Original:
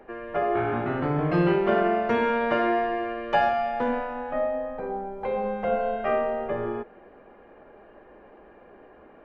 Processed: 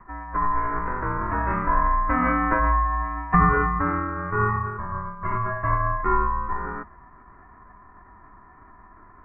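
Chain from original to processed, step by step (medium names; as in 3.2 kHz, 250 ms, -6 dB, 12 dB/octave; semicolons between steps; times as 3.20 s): mistuned SSB +100 Hz 520–2100 Hz; formant shift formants -6 st; ring modulator 510 Hz; trim +8.5 dB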